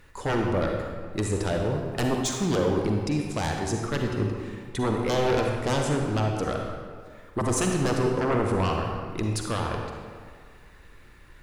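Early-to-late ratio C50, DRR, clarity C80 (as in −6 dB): 2.0 dB, 1.0 dB, 3.5 dB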